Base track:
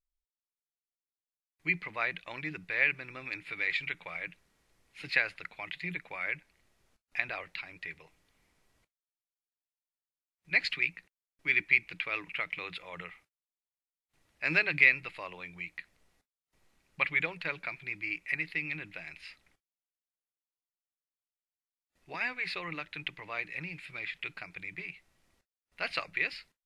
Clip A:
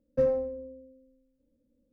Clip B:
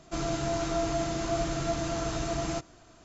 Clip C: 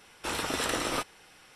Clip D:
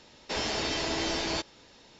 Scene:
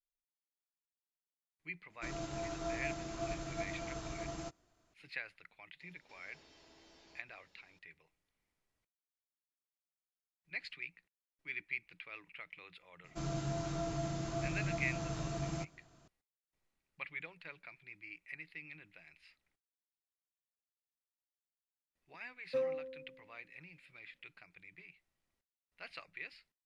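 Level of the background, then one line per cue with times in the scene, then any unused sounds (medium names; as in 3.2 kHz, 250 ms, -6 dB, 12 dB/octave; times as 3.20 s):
base track -15 dB
1.90 s: add B -9.5 dB + upward expansion, over -45 dBFS
5.80 s: add D -17 dB + compression 2.5:1, threshold -51 dBFS
13.04 s: add B -10.5 dB + peaking EQ 150 Hz +10.5 dB 0.6 oct
22.36 s: add A -4.5 dB + high-pass 790 Hz 6 dB/octave
not used: C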